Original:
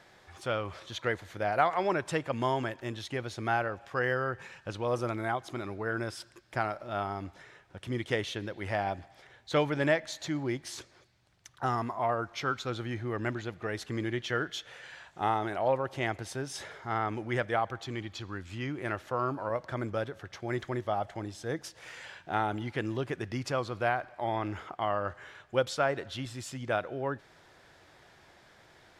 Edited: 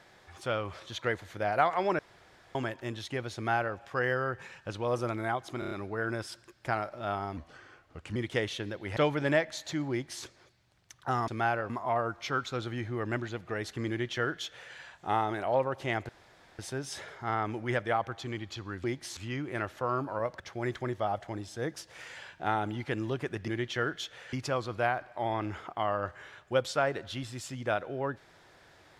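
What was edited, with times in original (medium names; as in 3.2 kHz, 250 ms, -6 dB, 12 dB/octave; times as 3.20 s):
1.99–2.55 s: room tone
3.35–3.77 s: copy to 11.83 s
5.59 s: stutter 0.03 s, 5 plays
7.25–7.92 s: speed 85%
8.73–9.52 s: delete
10.46–10.79 s: copy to 18.47 s
14.02–14.87 s: copy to 23.35 s
16.22 s: insert room tone 0.50 s
19.70–20.27 s: delete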